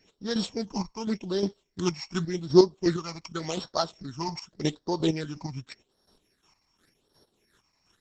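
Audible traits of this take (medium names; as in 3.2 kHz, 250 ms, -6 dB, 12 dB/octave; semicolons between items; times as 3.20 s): a buzz of ramps at a fixed pitch in blocks of 8 samples; chopped level 2.8 Hz, depth 60%, duty 30%; phasing stages 8, 0.87 Hz, lowest notch 440–2400 Hz; Opus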